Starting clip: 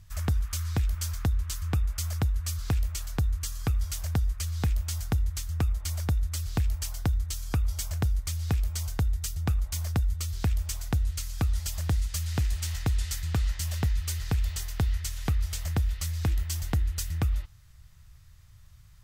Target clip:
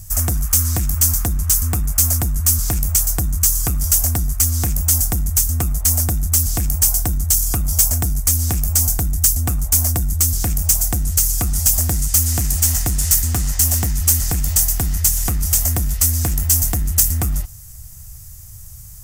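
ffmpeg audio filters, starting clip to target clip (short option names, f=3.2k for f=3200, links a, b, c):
-filter_complex "[0:a]equalizer=f=730:w=7.3:g=8.5,asplit=2[a][b];[b]adynamicsmooth=sensitivity=7.5:basefreq=730,volume=0.5dB[c];[a][c]amix=inputs=2:normalize=0,apsyclip=24.5dB,aexciter=amount=6.9:drive=8:freq=5.6k,volume=-16.5dB"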